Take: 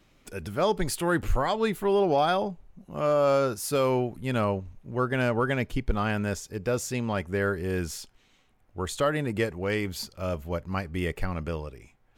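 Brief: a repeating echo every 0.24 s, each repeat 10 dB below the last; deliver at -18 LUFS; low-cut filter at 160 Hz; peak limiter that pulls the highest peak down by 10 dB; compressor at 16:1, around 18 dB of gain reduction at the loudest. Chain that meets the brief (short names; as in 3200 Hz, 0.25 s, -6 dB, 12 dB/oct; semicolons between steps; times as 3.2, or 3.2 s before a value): HPF 160 Hz; compressor 16:1, threshold -38 dBFS; limiter -36 dBFS; feedback echo 0.24 s, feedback 32%, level -10 dB; gain +28 dB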